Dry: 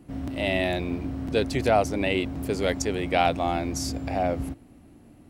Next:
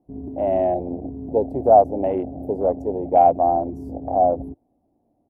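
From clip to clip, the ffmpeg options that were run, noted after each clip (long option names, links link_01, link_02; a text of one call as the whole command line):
ffmpeg -i in.wav -af "afwtdn=0.0355,firequalizer=gain_entry='entry(140,0);entry(240,4);entry(730,15);entry(1300,-10);entry(2700,-18);entry(4600,-19);entry(6700,-17);entry(12000,-2)':delay=0.05:min_phase=1,volume=-4dB" out.wav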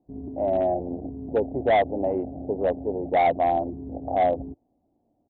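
ffmpeg -i in.wav -af "lowpass=1500,aresample=8000,asoftclip=type=hard:threshold=-12.5dB,aresample=44100,volume=-3dB" out.wav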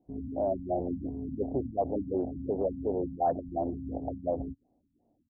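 ffmpeg -i in.wav -af "alimiter=limit=-20dB:level=0:latency=1:release=15,afftfilt=real='re*lt(b*sr/1024,260*pow(1800/260,0.5+0.5*sin(2*PI*2.8*pts/sr)))':imag='im*lt(b*sr/1024,260*pow(1800/260,0.5+0.5*sin(2*PI*2.8*pts/sr)))':win_size=1024:overlap=0.75,volume=-1dB" out.wav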